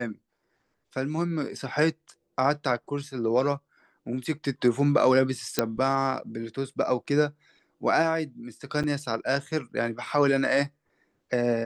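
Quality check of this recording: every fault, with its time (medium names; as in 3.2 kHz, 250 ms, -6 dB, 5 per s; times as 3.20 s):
5.59 s: pop -6 dBFS
8.83–8.84 s: dropout 7.2 ms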